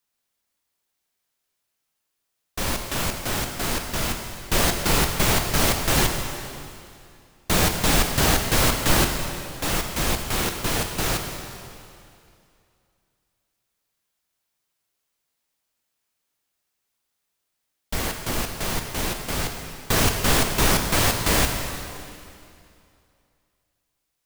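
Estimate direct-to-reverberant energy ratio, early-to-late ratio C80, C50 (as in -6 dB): 4.0 dB, 6.0 dB, 5.0 dB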